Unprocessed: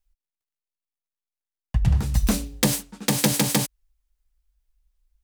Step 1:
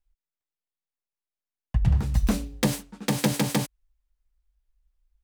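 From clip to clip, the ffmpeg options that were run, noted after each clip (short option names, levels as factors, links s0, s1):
-af "highshelf=f=3700:g=-8.5,volume=0.841"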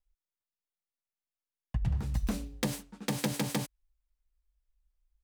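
-af "acompressor=threshold=0.0794:ratio=2.5,volume=0.531"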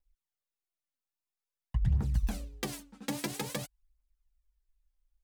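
-af "aphaser=in_gain=1:out_gain=1:delay=4:decay=0.61:speed=0.5:type=triangular,volume=0.596"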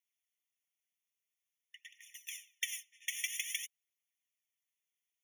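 -af "afftfilt=real='re*eq(mod(floor(b*sr/1024/1800),2),1)':imag='im*eq(mod(floor(b*sr/1024/1800),2),1)':win_size=1024:overlap=0.75,volume=1.88"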